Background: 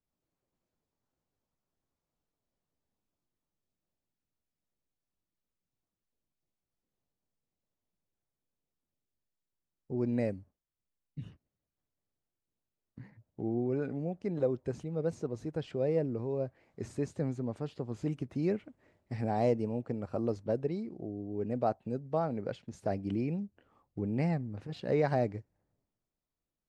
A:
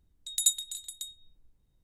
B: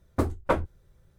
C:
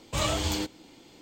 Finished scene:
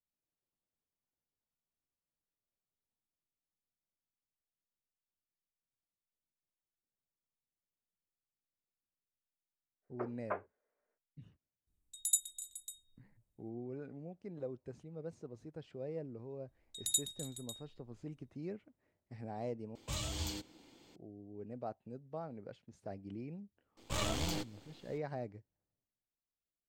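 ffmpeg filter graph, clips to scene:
-filter_complex "[1:a]asplit=2[a][b];[3:a]asplit=2[c][d];[0:a]volume=-12.5dB[e];[2:a]highpass=f=300:t=q:w=0.5412,highpass=f=300:t=q:w=1.307,lowpass=f=2.3k:t=q:w=0.5176,lowpass=f=2.3k:t=q:w=0.7071,lowpass=f=2.3k:t=q:w=1.932,afreqshift=79[f];[a]highshelf=f=6.2k:t=q:w=1.5:g=7.5[g];[c]acrossover=split=220|3000[h][i][j];[i]acompressor=threshold=-36dB:ratio=6:attack=3.2:release=140:knee=2.83:detection=peak[k];[h][k][j]amix=inputs=3:normalize=0[l];[d]aeval=exprs='if(lt(val(0),0),0.251*val(0),val(0))':c=same[m];[e]asplit=2[n][o];[n]atrim=end=19.754[p];[l]atrim=end=1.21,asetpts=PTS-STARTPTS,volume=-9dB[q];[o]atrim=start=20.956[r];[f]atrim=end=1.18,asetpts=PTS-STARTPTS,volume=-14dB,afade=t=in:d=0.05,afade=t=out:st=1.13:d=0.05,adelay=9810[s];[g]atrim=end=1.83,asetpts=PTS-STARTPTS,volume=-14dB,afade=t=in:d=0.004:c=hsin,afade=t=out:st=1.826:d=0.004:c=hsin,adelay=11670[t];[b]atrim=end=1.83,asetpts=PTS-STARTPTS,volume=-8dB,afade=t=in:d=0.004:c=hsin,afade=t=out:st=1.826:d=0.004:c=hsin,adelay=16480[u];[m]atrim=end=1.21,asetpts=PTS-STARTPTS,volume=-5.5dB,afade=t=in:d=0.004:c=hsin,afade=t=out:st=1.206:d=0.004:c=hsin,adelay=23770[v];[p][q]acrossfade=d=0.004:c1=hsin:c2=hsin[w];[w][r]acrossfade=d=0.004:c1=hsin:c2=hsin[x];[x][s][t][u][v]amix=inputs=5:normalize=0"

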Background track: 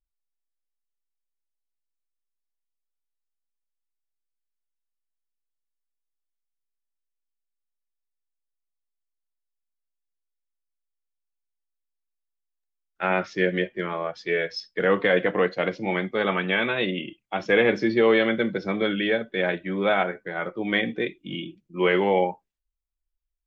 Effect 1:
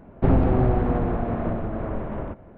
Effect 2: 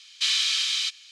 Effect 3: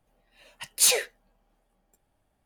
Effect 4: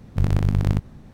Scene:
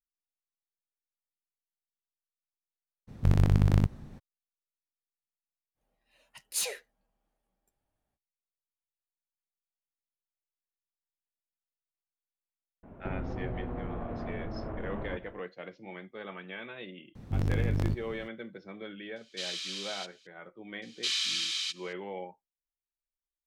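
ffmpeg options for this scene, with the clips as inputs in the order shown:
-filter_complex "[4:a]asplit=2[a][b];[2:a]asplit=2[c][d];[0:a]volume=-18.5dB[e];[1:a]acompressor=threshold=-29dB:ratio=6:attack=3.2:release=140:knee=1:detection=peak[f];[b]asoftclip=type=tanh:threshold=-19dB[g];[a]atrim=end=1.13,asetpts=PTS-STARTPTS,volume=-3dB,afade=t=in:d=0.02,afade=t=out:st=1.11:d=0.02,adelay=3070[h];[3:a]atrim=end=2.45,asetpts=PTS-STARTPTS,volume=-11.5dB,afade=t=in:d=0.05,afade=t=out:st=2.4:d=0.05,adelay=5740[i];[f]atrim=end=2.57,asetpts=PTS-STARTPTS,volume=-4dB,afade=t=in:d=0.004:c=hsin,afade=t=out:st=2.566:d=0.004:c=hsin,adelay=12830[j];[g]atrim=end=1.13,asetpts=PTS-STARTPTS,volume=-3.5dB,afade=t=in:d=0.004:c=hsin,afade=t=out:st=1.126:d=0.004:c=hsin,adelay=17150[k];[c]atrim=end=1.11,asetpts=PTS-STARTPTS,volume=-14dB,afade=t=in:d=0.004:c=hsin,afade=t=out:st=1.106:d=0.004:c=hsin,adelay=19160[l];[d]atrim=end=1.11,asetpts=PTS-STARTPTS,volume=-7dB,afade=t=in:d=0.004:c=hsin,afade=t=out:st=1.106:d=0.004:c=hsin,adelay=20820[m];[e][h][i][j][k][l][m]amix=inputs=7:normalize=0"

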